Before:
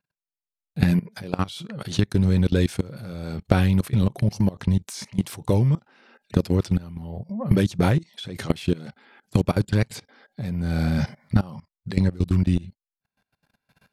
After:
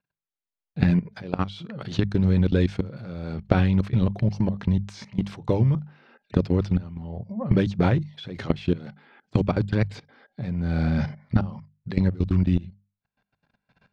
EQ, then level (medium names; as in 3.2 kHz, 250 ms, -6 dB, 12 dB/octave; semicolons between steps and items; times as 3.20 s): distance through air 170 m; hum notches 50/100/150/200 Hz; 0.0 dB